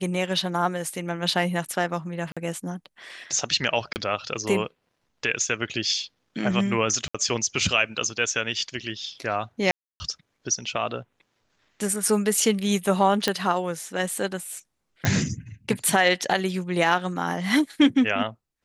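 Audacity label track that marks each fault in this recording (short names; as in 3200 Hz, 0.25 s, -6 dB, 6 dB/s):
2.320000	2.370000	gap 46 ms
3.930000	3.960000	gap 29 ms
7.080000	7.140000	gap 65 ms
9.710000	10.000000	gap 0.29 s
13.280000	13.280000	pop -7 dBFS
15.050000	15.050000	pop -8 dBFS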